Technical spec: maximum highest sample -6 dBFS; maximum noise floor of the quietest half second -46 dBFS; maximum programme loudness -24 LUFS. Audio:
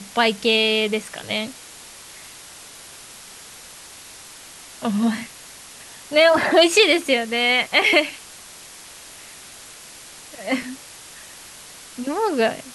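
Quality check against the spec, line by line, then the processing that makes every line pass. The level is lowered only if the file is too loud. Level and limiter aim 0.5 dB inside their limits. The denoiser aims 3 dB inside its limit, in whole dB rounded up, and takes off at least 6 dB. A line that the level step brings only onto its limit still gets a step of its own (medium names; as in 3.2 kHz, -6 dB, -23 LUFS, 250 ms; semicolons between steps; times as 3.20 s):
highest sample -3.5 dBFS: fail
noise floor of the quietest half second -42 dBFS: fail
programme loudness -19.0 LUFS: fail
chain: trim -5.5 dB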